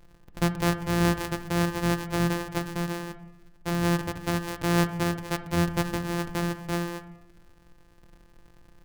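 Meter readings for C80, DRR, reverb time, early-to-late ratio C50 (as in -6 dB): 14.5 dB, 9.0 dB, 1.0 s, 12.5 dB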